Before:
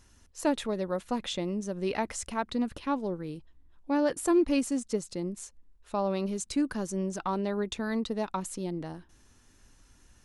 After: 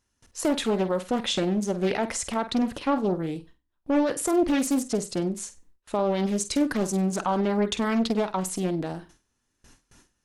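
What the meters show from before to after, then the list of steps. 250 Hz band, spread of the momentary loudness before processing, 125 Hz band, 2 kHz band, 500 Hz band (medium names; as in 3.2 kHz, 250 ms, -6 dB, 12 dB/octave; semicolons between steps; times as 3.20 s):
+5.0 dB, 11 LU, +6.5 dB, +5.0 dB, +5.0 dB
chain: gate with hold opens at -47 dBFS; bass shelf 100 Hz -8 dB; peak limiter -24 dBFS, peak gain reduction 8.5 dB; flutter echo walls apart 8.3 m, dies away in 0.25 s; loudspeaker Doppler distortion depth 0.49 ms; trim +8 dB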